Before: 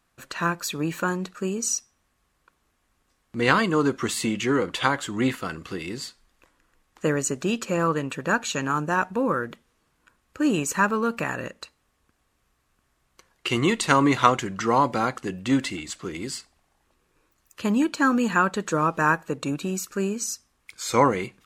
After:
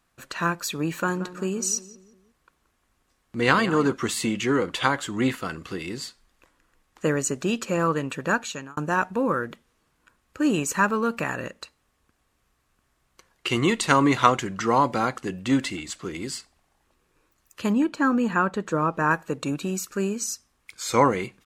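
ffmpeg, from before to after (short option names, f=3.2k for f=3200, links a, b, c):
-filter_complex "[0:a]asplit=3[a][b][c];[a]afade=t=out:st=1.06:d=0.02[d];[b]asplit=2[e][f];[f]adelay=177,lowpass=f=2k:p=1,volume=-13.5dB,asplit=2[g][h];[h]adelay=177,lowpass=f=2k:p=1,volume=0.46,asplit=2[i][j];[j]adelay=177,lowpass=f=2k:p=1,volume=0.46,asplit=2[k][l];[l]adelay=177,lowpass=f=2k:p=1,volume=0.46[m];[e][g][i][k][m]amix=inputs=5:normalize=0,afade=t=in:st=1.06:d=0.02,afade=t=out:st=3.92:d=0.02[n];[c]afade=t=in:st=3.92:d=0.02[o];[d][n][o]amix=inputs=3:normalize=0,asettb=1/sr,asplit=3[p][q][r];[p]atrim=end=17.734[s];[q]atrim=start=17.73:end=19.11,asetpts=PTS-STARTPTS,afade=t=in:d=0.004:c=qsin,afade=t=out:st=1.376:d=0.004:c=qsin,highshelf=f=2.5k:g=-10[t];[r]atrim=start=19.106[u];[s][t]acrossfade=d=0.004:c1=hsin:c2=qsin[v];[v][u]acrossfade=d=0.004:c1=qsin:c2=hsin,asplit=2[w][x];[w]atrim=end=8.77,asetpts=PTS-STARTPTS,afade=t=out:st=8.31:d=0.46[y];[x]atrim=start=8.77,asetpts=PTS-STARTPTS,afade=t=in:d=0.004:c=hsin[z];[y][z]concat=n=2:v=0:a=1"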